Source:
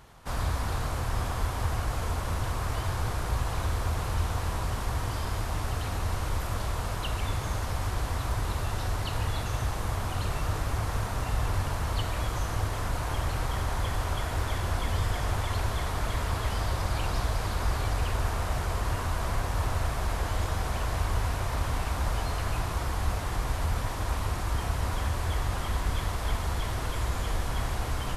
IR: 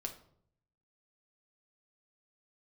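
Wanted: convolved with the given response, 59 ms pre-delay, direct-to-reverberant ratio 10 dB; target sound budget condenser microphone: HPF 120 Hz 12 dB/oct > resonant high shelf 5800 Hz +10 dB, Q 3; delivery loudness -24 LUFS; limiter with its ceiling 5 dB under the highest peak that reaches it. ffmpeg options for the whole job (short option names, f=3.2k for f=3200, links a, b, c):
-filter_complex "[0:a]alimiter=limit=-20.5dB:level=0:latency=1,asplit=2[a][b];[1:a]atrim=start_sample=2205,adelay=59[c];[b][c]afir=irnorm=-1:irlink=0,volume=-8.5dB[d];[a][d]amix=inputs=2:normalize=0,highpass=120,highshelf=f=5.8k:t=q:w=3:g=10,volume=6.5dB"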